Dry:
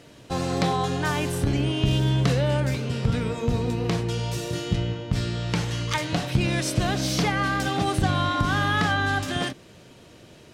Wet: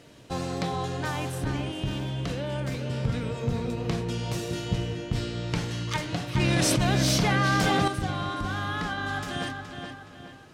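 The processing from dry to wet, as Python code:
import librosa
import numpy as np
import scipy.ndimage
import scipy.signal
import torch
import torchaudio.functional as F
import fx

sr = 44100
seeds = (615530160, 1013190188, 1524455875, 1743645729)

y = fx.rider(x, sr, range_db=4, speed_s=0.5)
y = fx.echo_filtered(y, sr, ms=420, feedback_pct=44, hz=4600.0, wet_db=-6.0)
y = fx.env_flatten(y, sr, amount_pct=100, at=(6.36, 7.88))
y = F.gain(torch.from_numpy(y), -6.5).numpy()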